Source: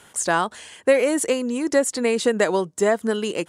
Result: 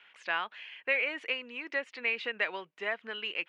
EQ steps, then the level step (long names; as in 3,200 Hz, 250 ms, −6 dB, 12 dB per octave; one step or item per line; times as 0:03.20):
resonant band-pass 2,500 Hz, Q 3.7
high-frequency loss of the air 280 metres
+6.0 dB